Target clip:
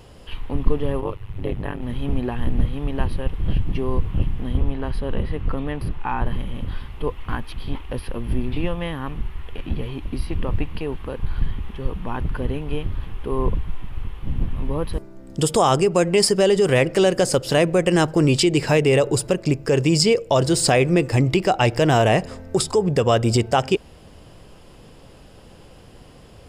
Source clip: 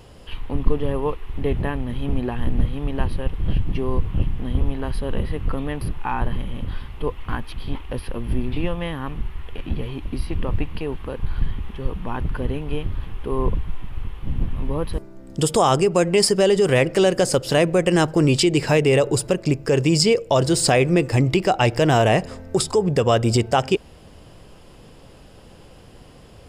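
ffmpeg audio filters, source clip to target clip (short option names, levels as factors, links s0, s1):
-filter_complex "[0:a]asplit=3[s0][s1][s2];[s0]afade=t=out:st=1:d=0.02[s3];[s1]tremolo=f=100:d=1,afade=t=in:st=1:d=0.02,afade=t=out:st=1.81:d=0.02[s4];[s2]afade=t=in:st=1.81:d=0.02[s5];[s3][s4][s5]amix=inputs=3:normalize=0,asettb=1/sr,asplit=3[s6][s7][s8];[s6]atrim=end=4.574[s9];[s7]atrim=start=4.57:end=6.26,asetpts=PTS-STARTPTS,afade=t=in:d=0.004:c=qsin,afade=t=out:st=1.686:d=0.004:c=qsin,highshelf=f=6700:g=-9[s10];[s8]atrim=start=6.256[s11];[s9][s10]acrossfade=d=0.004:c1=hsin:c2=qsin[s12];[s12][s11]acrossfade=d=0.004:c1=qsin:c2=hsin"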